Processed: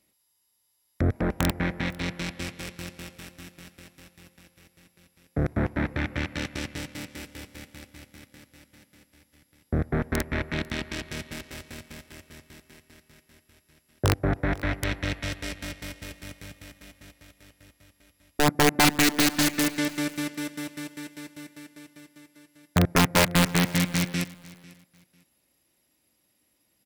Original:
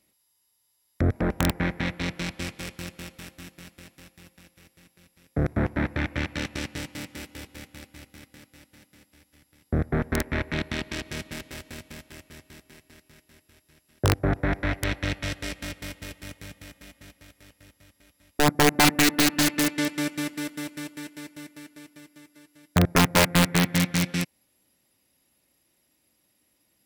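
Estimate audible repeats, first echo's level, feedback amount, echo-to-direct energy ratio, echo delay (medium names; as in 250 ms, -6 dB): 2, -21.5 dB, 24%, -21.5 dB, 497 ms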